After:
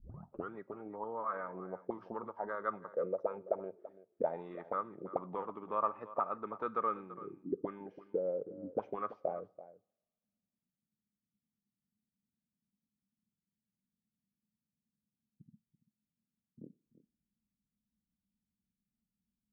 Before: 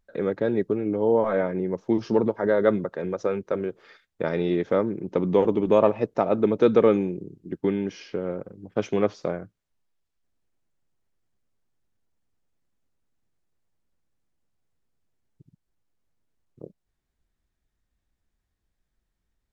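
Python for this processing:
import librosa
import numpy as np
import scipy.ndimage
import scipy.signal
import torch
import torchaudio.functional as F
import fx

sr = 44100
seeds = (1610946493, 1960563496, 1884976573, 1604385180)

y = fx.tape_start_head(x, sr, length_s=0.54)
y = fx.auto_wah(y, sr, base_hz=210.0, top_hz=1200.0, q=7.0, full_db=-19.5, direction='up')
y = fx.bass_treble(y, sr, bass_db=10, treble_db=-6)
y = y + 10.0 ** (-16.0 / 20.0) * np.pad(y, (int(335 * sr / 1000.0), 0))[:len(y)]
y = fx.rev_double_slope(y, sr, seeds[0], early_s=0.49, late_s=2.0, knee_db=-26, drr_db=19.5)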